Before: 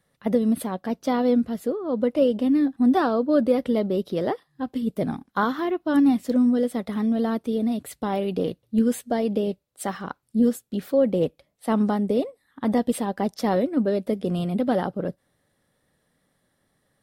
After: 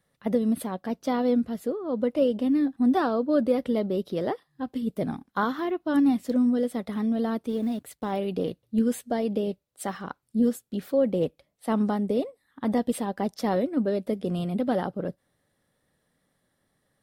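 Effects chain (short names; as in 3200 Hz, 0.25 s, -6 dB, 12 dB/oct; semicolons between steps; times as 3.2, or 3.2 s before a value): 7.49–8.12 G.711 law mismatch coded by A; gain -3 dB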